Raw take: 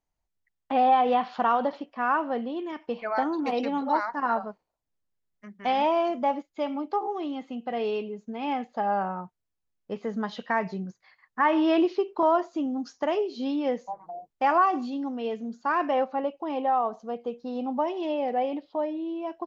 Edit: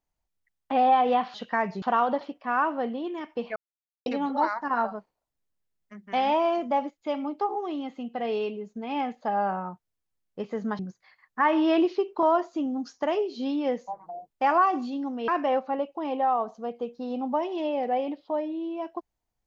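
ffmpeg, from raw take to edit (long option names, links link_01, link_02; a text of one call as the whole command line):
ffmpeg -i in.wav -filter_complex "[0:a]asplit=7[link_01][link_02][link_03][link_04][link_05][link_06][link_07];[link_01]atrim=end=1.342[link_08];[link_02]atrim=start=10.308:end=10.792[link_09];[link_03]atrim=start=1.338:end=3.08,asetpts=PTS-STARTPTS,afade=type=out:start_time=1.738:duration=0.004:curve=hsin[link_10];[link_04]atrim=start=3.08:end=3.58,asetpts=PTS-STARTPTS,volume=0[link_11];[link_05]atrim=start=3.58:end=10.312,asetpts=PTS-STARTPTS,afade=type=in:duration=0.004:curve=hsin[link_12];[link_06]atrim=start=10.788:end=15.282[link_13];[link_07]atrim=start=15.728[link_14];[link_08][link_09]acrossfade=duration=0.004:curve1=hsin:curve2=hsin[link_15];[link_10][link_11][link_12]concat=n=3:v=0:a=1[link_16];[link_15][link_16]acrossfade=duration=0.004:curve1=hsin:curve2=hsin[link_17];[link_17][link_13]acrossfade=duration=0.004:curve1=hsin:curve2=hsin[link_18];[link_18][link_14]acrossfade=duration=0.004:curve1=hsin:curve2=hsin" out.wav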